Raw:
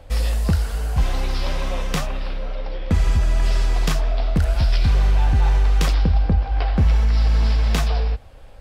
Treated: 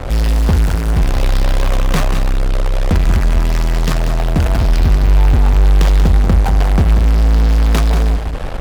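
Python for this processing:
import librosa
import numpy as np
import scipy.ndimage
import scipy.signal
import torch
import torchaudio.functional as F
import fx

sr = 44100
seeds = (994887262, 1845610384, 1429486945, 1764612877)

p1 = fx.high_shelf(x, sr, hz=2500.0, db=-7.5)
p2 = fx.fuzz(p1, sr, gain_db=46.0, gate_db=-44.0)
p3 = p1 + (p2 * librosa.db_to_amplitude(-3.5))
y = p3 + 10.0 ** (-8.5 / 20.0) * np.pad(p3, (int(187 * sr / 1000.0), 0))[:len(p3)]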